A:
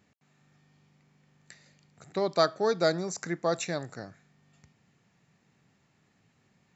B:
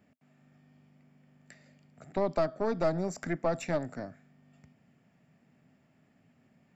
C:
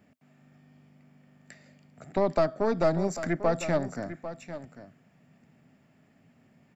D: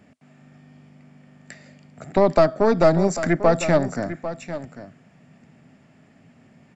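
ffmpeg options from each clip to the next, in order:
-filter_complex "[0:a]acrossover=split=290[a][b];[b]acompressor=threshold=-29dB:ratio=10[c];[a][c]amix=inputs=2:normalize=0,equalizer=f=160:t=o:w=0.33:g=4,equalizer=f=250:t=o:w=0.33:g=11,equalizer=f=630:t=o:w=0.33:g=9,equalizer=f=1k:t=o:w=0.33:g=-3,equalizer=f=4k:t=o:w=0.33:g=-10,equalizer=f=6.3k:t=o:w=0.33:g=-11,aeval=exprs='(tanh(11.2*val(0)+0.6)-tanh(0.6))/11.2':c=same,volume=1.5dB"
-af "aecho=1:1:797:0.237,volume=4dB"
-af "aresample=22050,aresample=44100,volume=8.5dB"

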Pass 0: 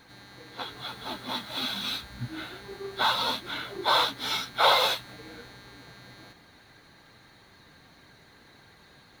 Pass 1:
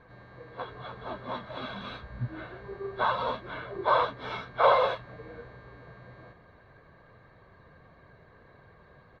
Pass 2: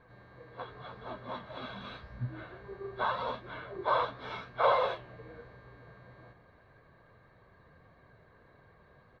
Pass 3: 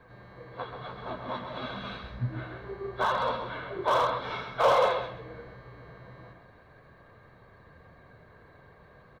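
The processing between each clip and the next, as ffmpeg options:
-af "lowpass=1.3k,aecho=1:1:1.8:0.53,volume=1.5dB"
-af "flanger=delay=7.9:depth=8.9:regen=88:speed=0.87:shape=sinusoidal"
-filter_complex "[0:a]aecho=1:1:131|262|393:0.447|0.0983|0.0216,acrossover=split=180|720[a][b][c];[c]volume=29dB,asoftclip=hard,volume=-29dB[d];[a][b][d]amix=inputs=3:normalize=0,volume=5dB"

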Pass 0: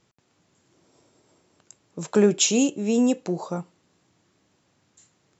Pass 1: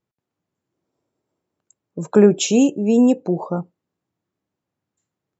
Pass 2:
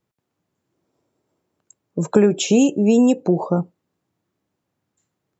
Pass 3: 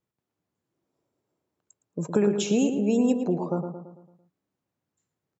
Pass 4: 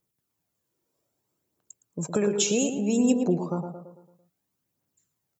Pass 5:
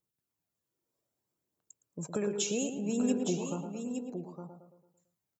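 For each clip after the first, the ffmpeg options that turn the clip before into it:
-af "afftdn=nr=21:nf=-40,highshelf=f=2.3k:g=-10,volume=6.5dB"
-filter_complex "[0:a]acrossover=split=690|2400[a][b][c];[a]acompressor=threshold=-18dB:ratio=4[d];[b]acompressor=threshold=-36dB:ratio=4[e];[c]acompressor=threshold=-30dB:ratio=4[f];[d][e][f]amix=inputs=3:normalize=0,volume=5.5dB"
-filter_complex "[0:a]asplit=2[a][b];[b]adelay=112,lowpass=f=2.4k:p=1,volume=-7dB,asplit=2[c][d];[d]adelay=112,lowpass=f=2.4k:p=1,volume=0.5,asplit=2[e][f];[f]adelay=112,lowpass=f=2.4k:p=1,volume=0.5,asplit=2[g][h];[h]adelay=112,lowpass=f=2.4k:p=1,volume=0.5,asplit=2[i][j];[j]adelay=112,lowpass=f=2.4k:p=1,volume=0.5,asplit=2[k][l];[l]adelay=112,lowpass=f=2.4k:p=1,volume=0.5[m];[a][c][e][g][i][k][m]amix=inputs=7:normalize=0,volume=-8.5dB"
-af "crystalizer=i=2.5:c=0,aphaser=in_gain=1:out_gain=1:delay=2.3:decay=0.38:speed=0.62:type=triangular,volume=-1.5dB"
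-af "aecho=1:1:864:0.422,volume=-8dB"

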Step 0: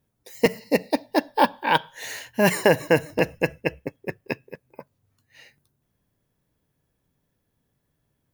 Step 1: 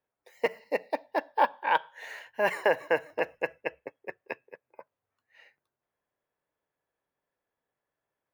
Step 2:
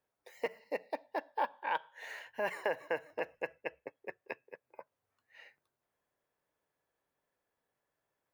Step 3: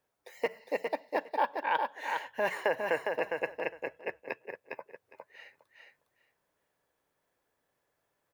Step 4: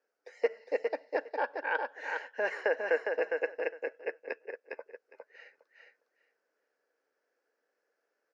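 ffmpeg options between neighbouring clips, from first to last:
-filter_complex "[0:a]acrossover=split=440 2600:gain=0.0794 1 0.141[a][b][c];[a][b][c]amix=inputs=3:normalize=0,volume=-3.5dB"
-af "acompressor=threshold=-50dB:ratio=1.5,volume=1dB"
-af "aecho=1:1:408|816|1224:0.596|0.0893|0.0134,volume=4.5dB"
-af "highpass=f=270:w=0.5412,highpass=f=270:w=1.3066,equalizer=f=470:t=q:w=4:g=8,equalizer=f=1k:t=q:w=4:g=-7,equalizer=f=1.5k:t=q:w=4:g=8,equalizer=f=3.5k:t=q:w=4:g=-10,equalizer=f=5.2k:t=q:w=4:g=4,lowpass=f=6.2k:w=0.5412,lowpass=f=6.2k:w=1.3066,volume=-3dB"

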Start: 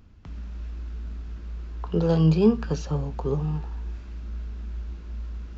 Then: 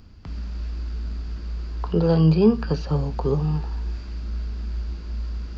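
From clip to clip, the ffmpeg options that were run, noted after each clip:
-filter_complex "[0:a]acrossover=split=3400[a][b];[b]acompressor=threshold=-60dB:ratio=4:attack=1:release=60[c];[a][c]amix=inputs=2:normalize=0,equalizer=f=4.7k:t=o:w=0.23:g=14,asplit=2[d][e];[e]alimiter=limit=-19dB:level=0:latency=1:release=384,volume=-2dB[f];[d][f]amix=inputs=2:normalize=0"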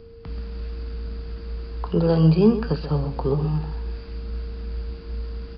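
-af "aeval=exprs='val(0)+0.00631*sin(2*PI*460*n/s)':c=same,aecho=1:1:130:0.251,aresample=11025,aresample=44100"

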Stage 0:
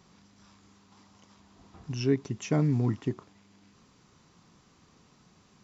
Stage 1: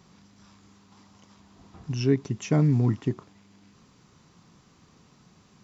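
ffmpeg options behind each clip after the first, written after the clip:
-af "equalizer=f=140:w=0.95:g=3,volume=2dB"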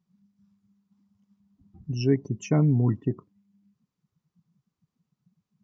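-af "afftdn=nr=29:nf=-39"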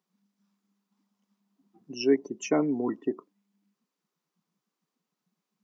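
-af "highpass=f=290:w=0.5412,highpass=f=290:w=1.3066,volume=3dB"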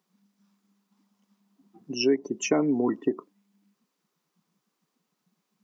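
-af "acompressor=threshold=-27dB:ratio=3,volume=6.5dB"

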